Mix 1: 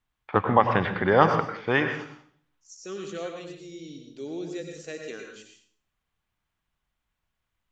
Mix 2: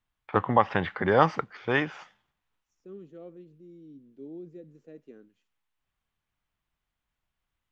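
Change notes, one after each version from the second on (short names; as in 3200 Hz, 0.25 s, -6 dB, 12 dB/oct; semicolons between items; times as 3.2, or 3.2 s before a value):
second voice: add band-pass 220 Hz, Q 1.2; reverb: off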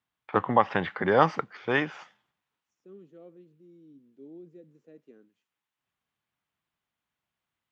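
second voice -4.5 dB; master: add HPF 130 Hz 12 dB/oct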